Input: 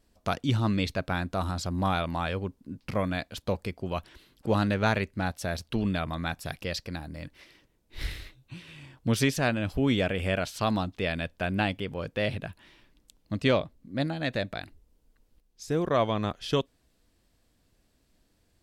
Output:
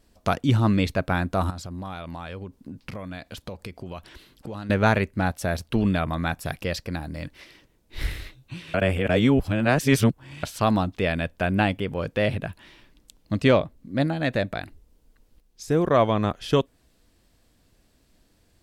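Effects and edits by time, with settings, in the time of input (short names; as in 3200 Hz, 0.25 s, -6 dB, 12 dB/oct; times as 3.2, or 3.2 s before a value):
1.5–4.7 compressor 5:1, threshold -39 dBFS
8.74–10.43 reverse
whole clip: dynamic EQ 4400 Hz, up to -6 dB, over -48 dBFS, Q 0.87; gain +6 dB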